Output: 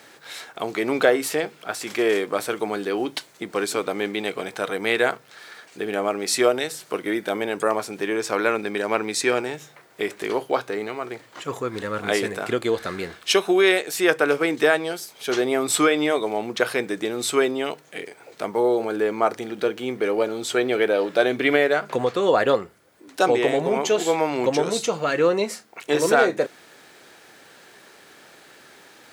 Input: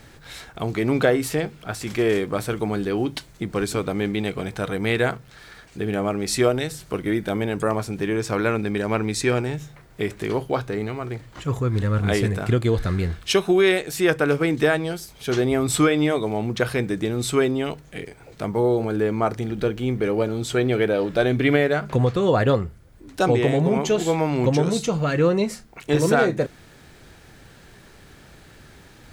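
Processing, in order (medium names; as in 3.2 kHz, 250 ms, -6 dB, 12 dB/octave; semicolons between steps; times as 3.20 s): high-pass 380 Hz 12 dB/octave; trim +2.5 dB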